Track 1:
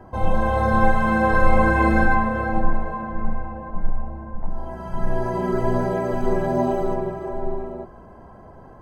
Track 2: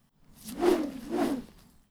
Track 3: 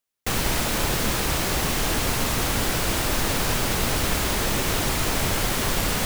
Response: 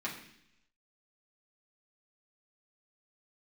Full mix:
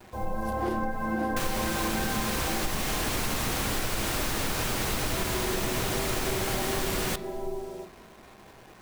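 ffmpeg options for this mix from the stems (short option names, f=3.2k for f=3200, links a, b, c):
-filter_complex "[0:a]lowpass=1.9k,equalizer=f=420:w=2.6:g=3,acrusher=bits=6:mix=0:aa=0.000001,volume=-11dB,asplit=2[a][b];[b]volume=-7dB[c];[1:a]volume=-5dB[d];[2:a]adelay=1100,volume=-2dB,asplit=2[e][f];[f]volume=-13dB[g];[3:a]atrim=start_sample=2205[h];[c][g]amix=inputs=2:normalize=0[i];[i][h]afir=irnorm=-1:irlink=0[j];[a][d][e][j]amix=inputs=4:normalize=0,acompressor=threshold=-25dB:ratio=6"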